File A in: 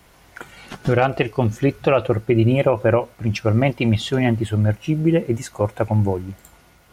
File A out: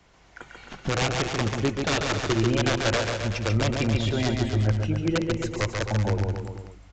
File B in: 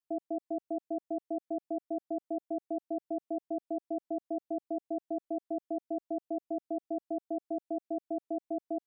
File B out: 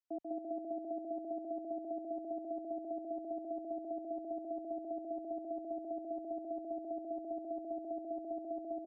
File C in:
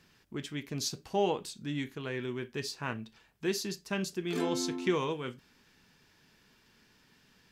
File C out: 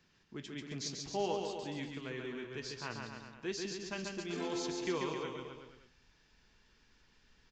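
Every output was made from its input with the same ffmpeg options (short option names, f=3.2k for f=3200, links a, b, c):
-filter_complex "[0:a]asubboost=boost=7.5:cutoff=56,acrossover=split=240[a][b];[b]aeval=exprs='(mod(4.22*val(0)+1,2)-1)/4.22':c=same[c];[a][c]amix=inputs=2:normalize=0,aecho=1:1:140|266|379.4|481.5|573.3:0.631|0.398|0.251|0.158|0.1,aresample=16000,aresample=44100,volume=-6.5dB"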